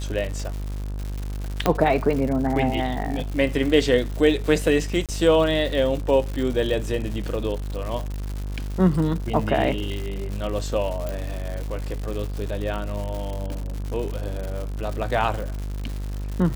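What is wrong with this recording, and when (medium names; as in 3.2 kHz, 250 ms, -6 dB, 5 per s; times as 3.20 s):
buzz 50 Hz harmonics 34 -29 dBFS
crackle 190 per s -29 dBFS
1.66 s: pop -5 dBFS
5.06–5.09 s: dropout 27 ms
11.09 s: pop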